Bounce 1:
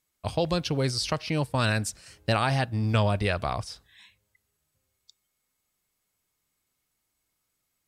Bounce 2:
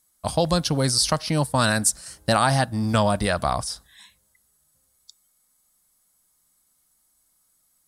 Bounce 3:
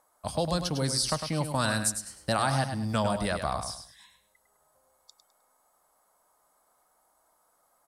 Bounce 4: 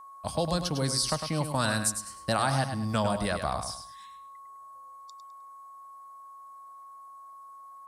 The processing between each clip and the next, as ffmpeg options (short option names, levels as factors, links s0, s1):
-af "equalizer=f=100:t=o:w=0.67:g=-10,equalizer=f=400:t=o:w=0.67:g=-8,equalizer=f=2500:t=o:w=0.67:g=-11,equalizer=f=10000:t=o:w=0.67:g=10,volume=2.51"
-filter_complex "[0:a]acrossover=split=520|1100[s0][s1][s2];[s1]acompressor=mode=upward:threshold=0.00708:ratio=2.5[s3];[s0][s3][s2]amix=inputs=3:normalize=0,aecho=1:1:103|206|309:0.398|0.111|0.0312,volume=0.422"
-af "aeval=exprs='val(0)+0.00562*sin(2*PI*1100*n/s)':c=same"